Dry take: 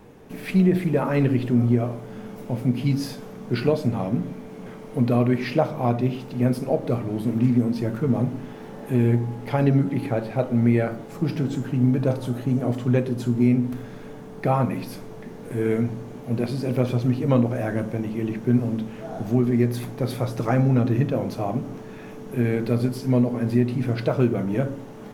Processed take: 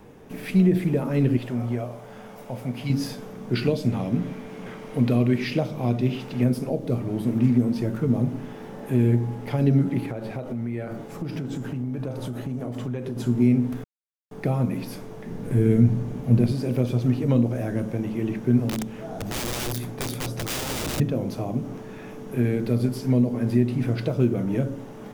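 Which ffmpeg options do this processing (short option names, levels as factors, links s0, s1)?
-filter_complex "[0:a]asettb=1/sr,asplit=3[s0][s1][s2];[s0]atrim=end=1.374[s3];[s1]atrim=start=1.37:end=2.9,asetpts=PTS-STARTPTS,afade=t=in:d=0.004:c=qsin,afade=t=out:st=1.526:d=0.004:c=qsin,lowshelf=f=460:t=q:w=1.5:g=-7[s4];[s2]atrim=start=2.896[s5];[s3][s4]acrossfade=d=0.004:c1=hsin:c2=qsin[s6];[s6][s5]acrossfade=d=0.004:c1=qsin:c2=hsin,asettb=1/sr,asplit=3[s7][s8][s9];[s7]atrim=end=3.554[s10];[s8]atrim=start=3.55:end=6.44,asetpts=PTS-STARTPTS,afade=t=in:d=0.004:c=qsin,afade=t=out:st=2.886:d=0.004:c=qsin,equalizer=f=2500:t=o:w=2.4:g=6[s11];[s9]atrim=start=6.436[s12];[s10][s11]acrossfade=d=0.004:c1=hsin:c2=qsin[s13];[s13][s12]acrossfade=d=0.004:c1=qsin:c2=hsin,asettb=1/sr,asplit=3[s14][s15][s16];[s14]atrim=end=10.004[s17];[s15]atrim=start=10:end=13.17,asetpts=PTS-STARTPTS,afade=t=in:d=0.004:c=qsin,afade=t=out:st=3.166:d=0.004:c=qsin,acompressor=threshold=0.0501:ratio=6:attack=3.2:release=140:knee=1:detection=peak[s18];[s16]atrim=start=13.166[s19];[s17][s18]acrossfade=d=0.004:c1=hsin:c2=qsin[s20];[s20][s19]acrossfade=d=0.004:c1=qsin:c2=hsin,asettb=1/sr,asplit=3[s21][s22][s23];[s21]atrim=end=15.284[s24];[s22]atrim=start=15.28:end=16.52,asetpts=PTS-STARTPTS,afade=t=in:d=0.004:c=qsin,afade=t=out:st=1.236:d=0.004:c=qsin,bass=f=250:g=10,treble=f=4000:g=0[s25];[s23]atrim=start=16.516[s26];[s24][s25]acrossfade=d=0.004:c1=hsin:c2=qsin[s27];[s27][s26]acrossfade=d=0.004:c1=qsin:c2=hsin,asettb=1/sr,asplit=3[s28][s29][s30];[s28]atrim=end=18.694[s31];[s29]atrim=start=18.69:end=21,asetpts=PTS-STARTPTS,afade=t=in:d=0.004:c=qsin,afade=t=out:st=2.306:d=0.004:c=qsin,aeval=exprs='(mod(11.2*val(0)+1,2)-1)/11.2':c=same[s32];[s30]atrim=start=20.996[s33];[s31][s32]acrossfade=d=0.004:c1=hsin:c2=qsin[s34];[s34][s33]acrossfade=d=0.004:c1=qsin:c2=hsin,asplit=3[s35][s36][s37];[s35]atrim=end=13.84,asetpts=PTS-STARTPTS,afade=t=out:st=13.836:d=0.004:c=hsin[s38];[s36]atrim=start=13.84:end=14.31,asetpts=PTS-STARTPTS,volume=0[s39];[s37]atrim=start=14.31,asetpts=PTS-STARTPTS,afade=t=in:d=0.004:c=hsin[s40];[s38][s39][s40]concat=n=3:v=0:a=1,bandreject=f=4200:w=25,acrossover=split=480|3000[s41][s42][s43];[s42]acompressor=threshold=0.0158:ratio=6[s44];[s41][s44][s43]amix=inputs=3:normalize=0"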